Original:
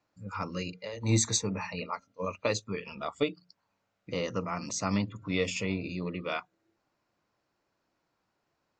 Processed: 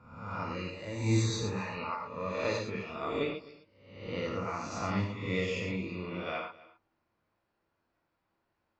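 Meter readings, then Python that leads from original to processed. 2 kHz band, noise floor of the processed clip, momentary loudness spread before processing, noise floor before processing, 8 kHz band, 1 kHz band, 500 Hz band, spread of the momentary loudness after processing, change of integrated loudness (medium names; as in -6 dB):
-0.5 dB, -81 dBFS, 10 LU, -80 dBFS, -11.5 dB, +0.5 dB, -1.0 dB, 10 LU, -2.0 dB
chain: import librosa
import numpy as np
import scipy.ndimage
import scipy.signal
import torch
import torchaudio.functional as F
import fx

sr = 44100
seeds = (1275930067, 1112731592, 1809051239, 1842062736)

p1 = fx.spec_swells(x, sr, rise_s=0.81)
p2 = scipy.signal.sosfilt(scipy.signal.butter(2, 3500.0, 'lowpass', fs=sr, output='sos'), p1)
p3 = fx.low_shelf(p2, sr, hz=76.0, db=5.5)
p4 = p3 + fx.echo_single(p3, sr, ms=259, db=-20.0, dry=0)
p5 = fx.rev_gated(p4, sr, seeds[0], gate_ms=140, shape='flat', drr_db=0.0)
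y = p5 * librosa.db_to_amplitude(-6.5)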